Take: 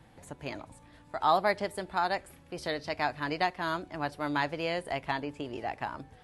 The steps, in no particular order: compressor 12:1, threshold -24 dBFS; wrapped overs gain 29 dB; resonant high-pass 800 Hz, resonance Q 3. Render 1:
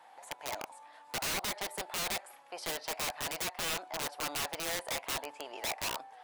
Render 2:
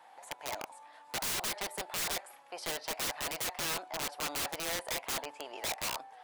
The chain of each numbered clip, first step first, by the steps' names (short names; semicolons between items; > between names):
resonant high-pass > compressor > wrapped overs; compressor > resonant high-pass > wrapped overs